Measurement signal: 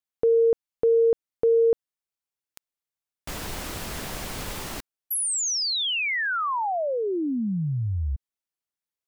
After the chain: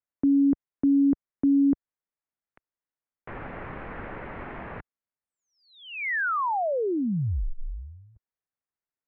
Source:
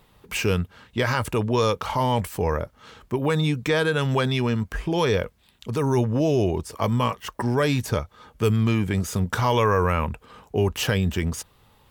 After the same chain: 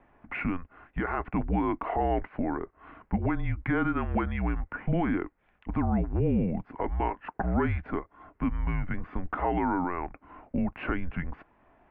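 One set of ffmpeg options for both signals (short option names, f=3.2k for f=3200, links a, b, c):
-af "alimiter=limit=-16.5dB:level=0:latency=1:release=472,highpass=f=160:t=q:w=0.5412,highpass=f=160:t=q:w=1.307,lowpass=f=2.3k:t=q:w=0.5176,lowpass=f=2.3k:t=q:w=0.7071,lowpass=f=2.3k:t=q:w=1.932,afreqshift=-180"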